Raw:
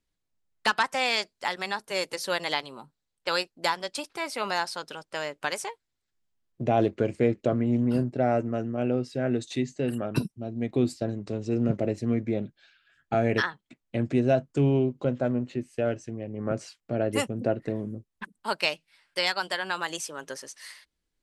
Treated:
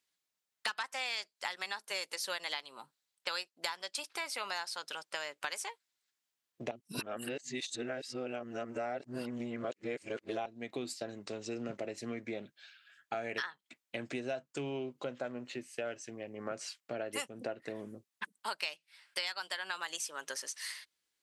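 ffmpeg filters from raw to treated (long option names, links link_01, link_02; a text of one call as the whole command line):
ffmpeg -i in.wav -filter_complex "[0:a]asplit=3[link_01][link_02][link_03];[link_01]atrim=end=6.712[link_04];[link_02]atrim=start=6.708:end=10.462,asetpts=PTS-STARTPTS,areverse[link_05];[link_03]atrim=start=10.458[link_06];[link_04][link_05]acrossfade=duration=0.004:curve1=hsin:curve2=hsin[link_07];[link_07][link_06]acrossfade=duration=0.004:curve1=hsin:curve2=hsin,lowpass=frequency=1500:poles=1,aderivative,acompressor=threshold=-54dB:ratio=4,volume=18dB" out.wav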